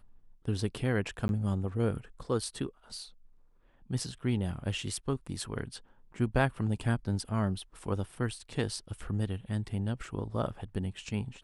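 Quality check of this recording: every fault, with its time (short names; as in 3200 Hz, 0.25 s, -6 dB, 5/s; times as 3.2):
1.28–1.29 gap 11 ms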